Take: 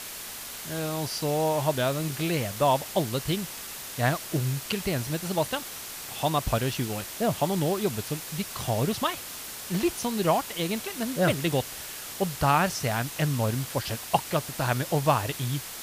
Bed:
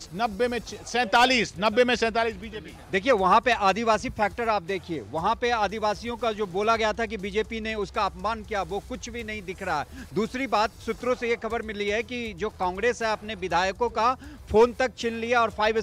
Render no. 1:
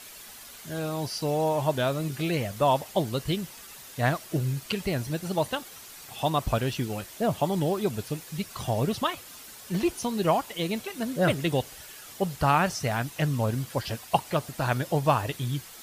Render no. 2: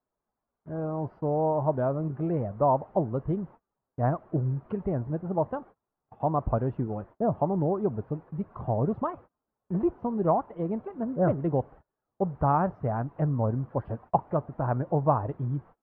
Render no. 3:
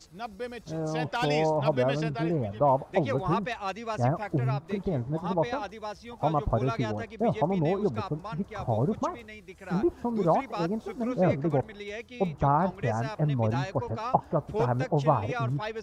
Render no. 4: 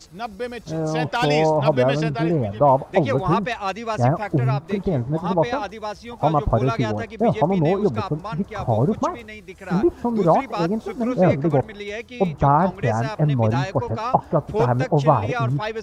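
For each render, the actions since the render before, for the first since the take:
broadband denoise 9 dB, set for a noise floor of −39 dBFS
low-pass filter 1,100 Hz 24 dB per octave; noise gate −46 dBFS, range −30 dB
mix in bed −11.5 dB
level +7.5 dB; brickwall limiter −3 dBFS, peak gain reduction 2 dB

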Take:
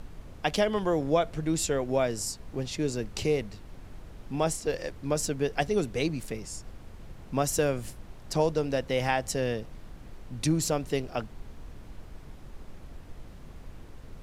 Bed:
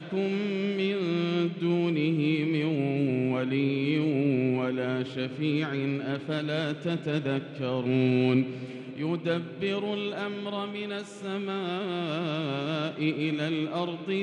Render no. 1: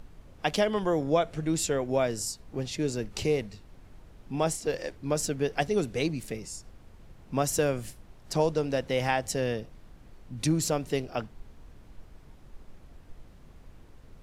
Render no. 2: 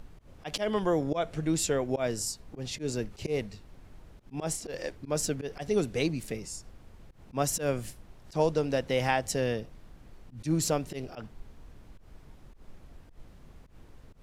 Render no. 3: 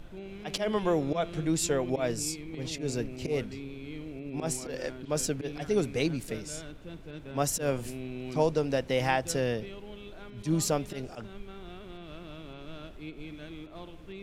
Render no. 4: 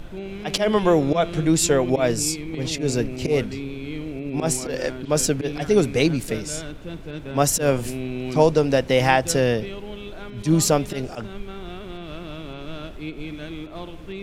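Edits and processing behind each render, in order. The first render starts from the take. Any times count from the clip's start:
noise reduction from a noise print 6 dB
volume swells 106 ms
mix in bed −15 dB
level +9.5 dB

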